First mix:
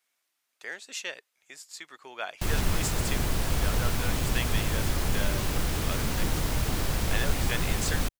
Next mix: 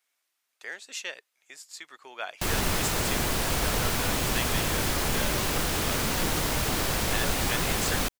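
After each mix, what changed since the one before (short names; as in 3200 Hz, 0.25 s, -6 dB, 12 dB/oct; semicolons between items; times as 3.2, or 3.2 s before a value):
background +5.5 dB; master: add low shelf 180 Hz -11 dB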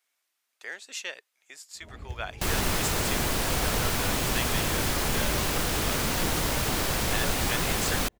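first sound: unmuted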